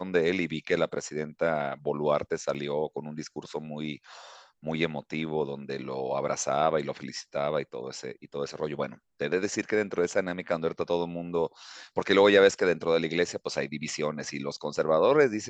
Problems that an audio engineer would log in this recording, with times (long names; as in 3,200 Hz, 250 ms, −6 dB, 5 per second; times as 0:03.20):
0:02.54–0:02.55: drop-out 7 ms